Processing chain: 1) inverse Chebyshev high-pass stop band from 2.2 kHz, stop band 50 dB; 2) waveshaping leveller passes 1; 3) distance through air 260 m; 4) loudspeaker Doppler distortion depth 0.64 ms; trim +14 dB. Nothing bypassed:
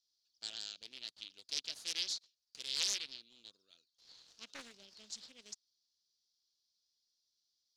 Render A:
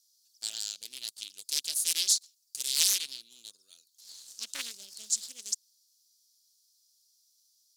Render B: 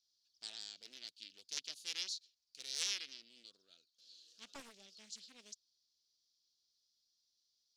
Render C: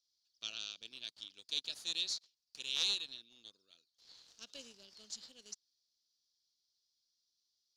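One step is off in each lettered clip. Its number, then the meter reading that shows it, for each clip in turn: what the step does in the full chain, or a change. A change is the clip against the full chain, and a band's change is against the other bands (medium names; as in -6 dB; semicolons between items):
3, 8 kHz band +11.0 dB; 2, 4 kHz band -2.0 dB; 4, 8 kHz band -4.5 dB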